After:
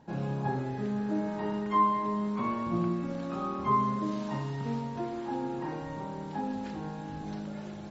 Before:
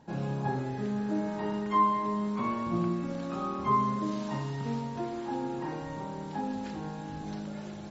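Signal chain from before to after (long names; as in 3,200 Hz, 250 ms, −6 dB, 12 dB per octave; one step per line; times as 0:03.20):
high-shelf EQ 5,200 Hz −6 dB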